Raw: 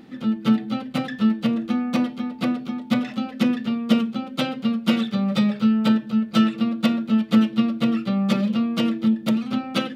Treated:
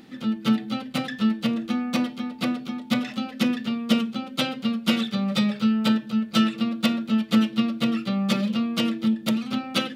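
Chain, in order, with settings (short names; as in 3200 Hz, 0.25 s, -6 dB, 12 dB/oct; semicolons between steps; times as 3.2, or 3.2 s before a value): high shelf 2200 Hz +8 dB; gain -3 dB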